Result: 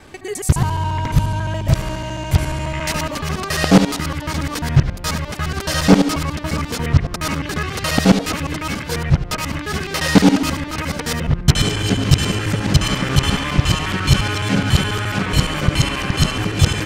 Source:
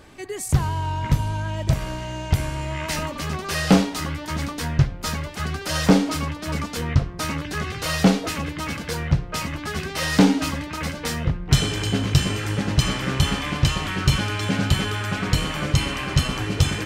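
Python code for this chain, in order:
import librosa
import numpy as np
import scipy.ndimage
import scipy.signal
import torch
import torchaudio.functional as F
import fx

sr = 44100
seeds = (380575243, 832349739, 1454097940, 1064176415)

y = fx.local_reverse(x, sr, ms=70.0)
y = y * librosa.db_to_amplitude(5.0)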